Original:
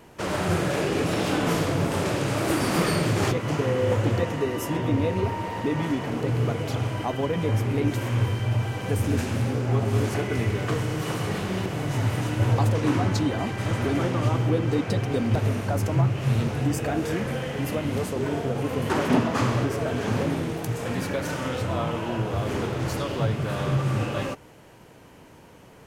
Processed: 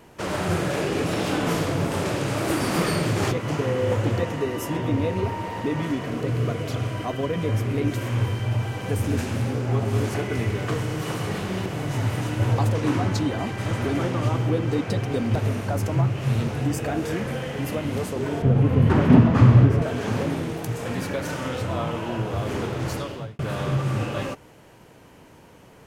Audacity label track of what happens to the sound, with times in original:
5.800000	8.090000	Butterworth band-stop 850 Hz, Q 6.1
18.420000	19.820000	tone controls bass +14 dB, treble -11 dB
22.930000	23.390000	fade out

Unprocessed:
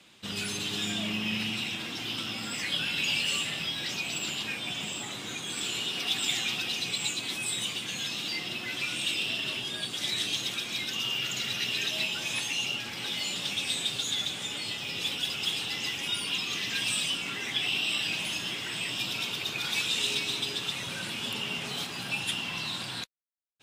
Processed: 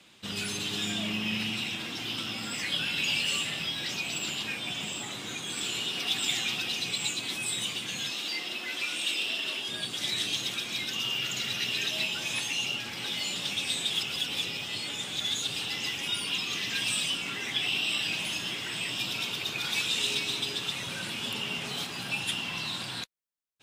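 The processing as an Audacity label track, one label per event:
8.110000	9.690000	HPF 290 Hz
13.900000	15.560000	reverse

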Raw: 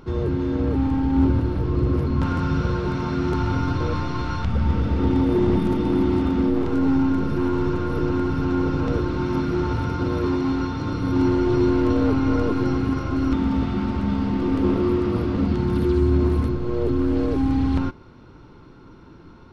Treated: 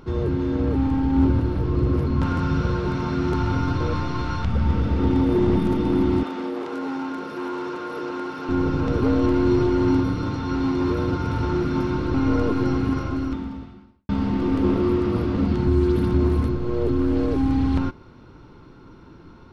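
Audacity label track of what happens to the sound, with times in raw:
6.230000	8.490000	HPF 460 Hz
9.020000	12.140000	reverse
13.010000	14.090000	fade out quadratic
15.670000	16.140000	reverse

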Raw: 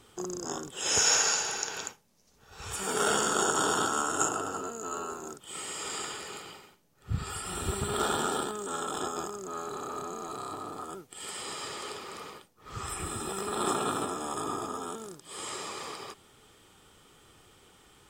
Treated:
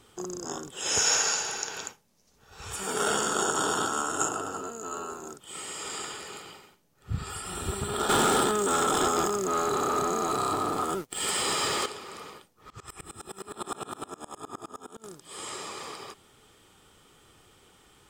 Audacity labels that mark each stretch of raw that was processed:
8.090000	11.860000	sample leveller passes 3
12.700000	15.040000	dB-ramp tremolo swelling 9.7 Hz, depth 27 dB

